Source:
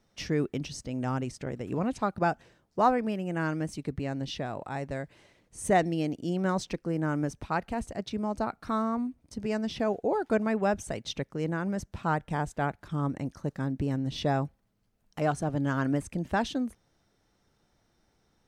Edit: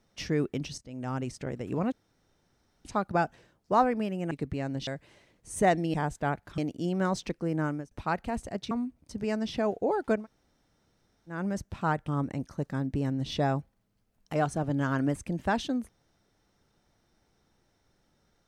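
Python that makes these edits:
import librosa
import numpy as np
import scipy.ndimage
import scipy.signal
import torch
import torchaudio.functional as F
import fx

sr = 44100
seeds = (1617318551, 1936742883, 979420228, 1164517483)

y = fx.edit(x, sr, fx.fade_in_from(start_s=0.78, length_s=0.51, floor_db=-14.5),
    fx.insert_room_tone(at_s=1.92, length_s=0.93),
    fx.cut(start_s=3.38, length_s=0.39),
    fx.cut(start_s=4.33, length_s=0.62),
    fx.fade_out_span(start_s=7.09, length_s=0.26),
    fx.cut(start_s=8.15, length_s=0.78),
    fx.room_tone_fill(start_s=10.41, length_s=1.15, crossfade_s=0.16),
    fx.move(start_s=12.3, length_s=0.64, to_s=6.02), tone=tone)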